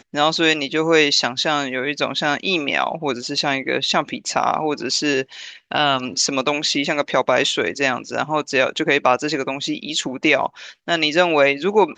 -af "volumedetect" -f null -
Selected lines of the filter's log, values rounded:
mean_volume: -20.0 dB
max_volume: -2.3 dB